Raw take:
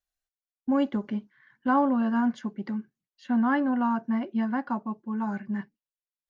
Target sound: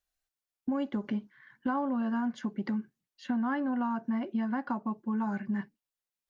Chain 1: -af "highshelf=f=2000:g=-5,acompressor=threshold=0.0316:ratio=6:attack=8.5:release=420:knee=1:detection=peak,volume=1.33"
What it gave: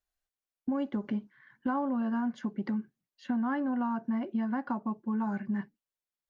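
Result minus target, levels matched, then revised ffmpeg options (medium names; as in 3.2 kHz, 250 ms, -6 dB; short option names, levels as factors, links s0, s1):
4 kHz band -3.5 dB
-af "acompressor=threshold=0.0316:ratio=6:attack=8.5:release=420:knee=1:detection=peak,volume=1.33"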